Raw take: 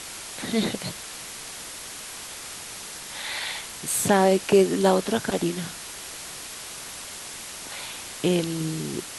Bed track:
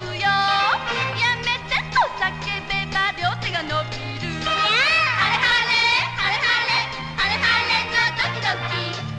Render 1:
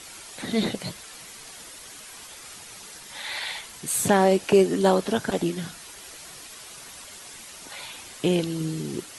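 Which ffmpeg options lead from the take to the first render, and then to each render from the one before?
-af "afftdn=nr=8:nf=-39"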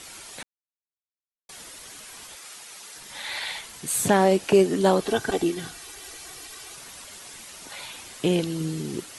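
-filter_complex "[0:a]asettb=1/sr,asplit=3[a][b][c];[a]atrim=end=2.364[d];[b]atrim=start=2.36:end=2.97,asetpts=PTS-STARTPTS,afade=t=in:d=0.004:c=qsin,afade=t=out:st=0.606:d=0.004:c=qsin,highpass=f=530:p=1[e];[c]atrim=start=2.966[f];[d][e]acrossfade=d=0.004:c1=hsin:c2=qsin[g];[g][f]acrossfade=d=0.004:c1=qsin:c2=hsin,asettb=1/sr,asplit=3[h][i][j];[h]atrim=end=5.004[k];[i]atrim=start=5:end=6.75,asetpts=PTS-STARTPTS,afade=t=in:d=0.004:c=qsin,afade=t=out:st=1.746:d=0.004:c=qsin,aecho=1:1:2.6:0.55,atrim=end_sample=77175[l];[j]atrim=start=6.746[m];[k][l]acrossfade=d=0.004:c1=hsin:c2=qsin[n];[n][m]acrossfade=d=0.004:c1=qsin:c2=hsin,asplit=3[o][p][q];[o]atrim=end=0.43,asetpts=PTS-STARTPTS,afade=t=out:st=0.426:d=0.004:c=hsin[r];[p]atrim=start=0.43:end=1.49,asetpts=PTS-STARTPTS,volume=0[s];[q]atrim=start=1.49,asetpts=PTS-STARTPTS,afade=t=in:d=0.004:c=hsin[t];[r][s][t]concat=n=3:v=0:a=1"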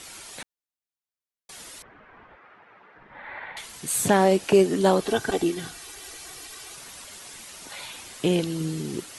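-filter_complex "[0:a]asettb=1/sr,asplit=3[a][b][c];[a]atrim=end=1.824[d];[b]atrim=start=1.82:end=3.57,asetpts=PTS-STARTPTS,afade=t=in:d=0.004:c=qsin,afade=t=out:st=1.746:d=0.004:c=qsin,lowpass=f=1.8k:w=0.5412,lowpass=f=1.8k:w=1.3066[e];[c]atrim=start=3.566[f];[d][e]acrossfade=d=0.004:c1=hsin:c2=qsin[g];[g][f]acrossfade=d=0.004:c1=qsin:c2=hsin"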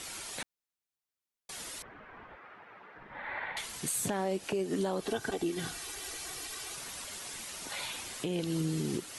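-af "acompressor=threshold=-25dB:ratio=4,alimiter=limit=-23dB:level=0:latency=1:release=296"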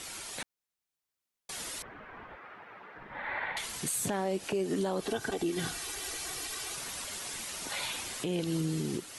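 -af "dynaudnorm=f=140:g=11:m=3dB,alimiter=limit=-23dB:level=0:latency=1:release=52"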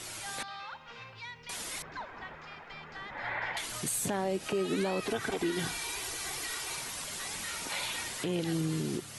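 -filter_complex "[1:a]volume=-24.5dB[a];[0:a][a]amix=inputs=2:normalize=0"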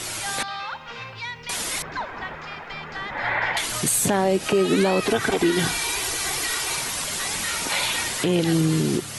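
-af "volume=11.5dB"

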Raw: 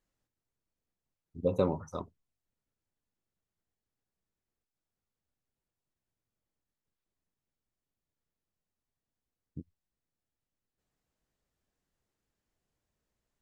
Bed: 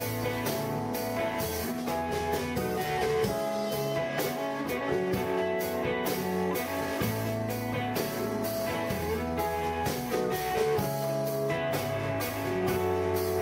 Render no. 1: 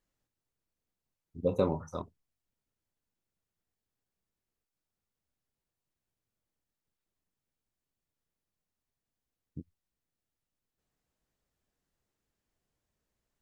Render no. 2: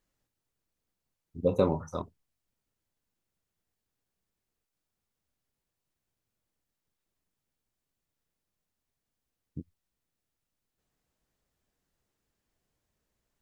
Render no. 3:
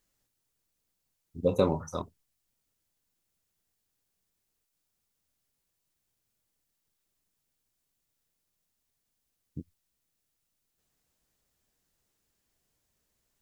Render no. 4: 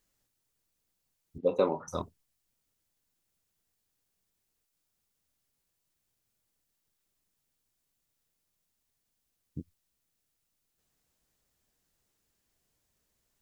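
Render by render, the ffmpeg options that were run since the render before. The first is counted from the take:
-filter_complex "[0:a]asettb=1/sr,asplit=3[a][b][c];[a]atrim=end=1.474[d];[b]atrim=start=1.47:end=2.02,asetpts=PTS-STARTPTS,afade=t=in:d=0.004:c=qsin,afade=t=out:st=0.546:d=0.004:c=qsin,asplit=2[e][f];[f]adelay=25,volume=-10dB[g];[e][g]amix=inputs=2:normalize=0,atrim=end_sample=24255[h];[c]atrim=start=2.016[i];[d][h]acrossfade=d=0.004:c1=hsin:c2=qsin[j];[j][i]acrossfade=d=0.004:c1=qsin:c2=hsin"
-af "volume=3dB"
-af "highshelf=f=3.4k:g=8.5"
-filter_complex "[0:a]asettb=1/sr,asplit=3[a][b][c];[a]atrim=end=1.384[d];[b]atrim=start=1.38:end=1.88,asetpts=PTS-STARTPTS,afade=t=in:d=0.004:c=qsin,afade=t=out:st=0.496:d=0.004:c=qsin,highpass=310,lowpass=3.2k[e];[c]atrim=start=1.876[f];[d][e]acrossfade=d=0.004:c1=hsin:c2=qsin[g];[g][f]acrossfade=d=0.004:c1=qsin:c2=hsin"

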